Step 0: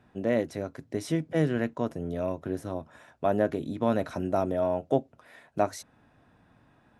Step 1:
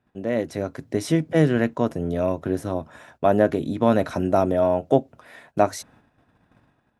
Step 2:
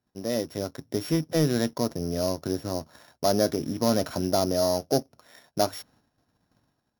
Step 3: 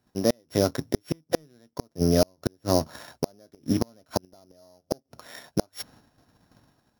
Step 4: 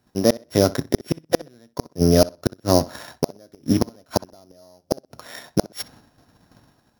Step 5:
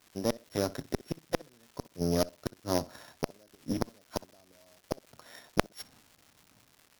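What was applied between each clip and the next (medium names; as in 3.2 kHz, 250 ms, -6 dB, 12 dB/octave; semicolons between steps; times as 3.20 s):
gate -59 dBFS, range -11 dB; level rider gain up to 7.5 dB
sorted samples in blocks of 8 samples; waveshaping leveller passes 1; trim -7.5 dB
inverted gate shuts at -18 dBFS, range -40 dB; trim +9 dB
tape echo 63 ms, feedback 22%, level -18 dB, low-pass 5.5 kHz; trim +5.5 dB
Chebyshev shaper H 3 -8 dB, 5 -19 dB, 6 -29 dB, 8 -42 dB, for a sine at -1 dBFS; crackle 360 per s -42 dBFS; trim -4 dB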